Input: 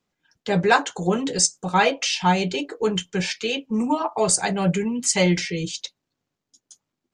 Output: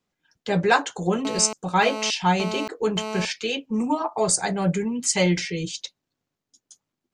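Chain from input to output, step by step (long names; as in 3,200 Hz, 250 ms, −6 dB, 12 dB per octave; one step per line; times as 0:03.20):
0:01.25–0:03.25: phone interference −29 dBFS
0:03.94–0:04.92: parametric band 2,800 Hz −8.5 dB 0.35 octaves
level −1.5 dB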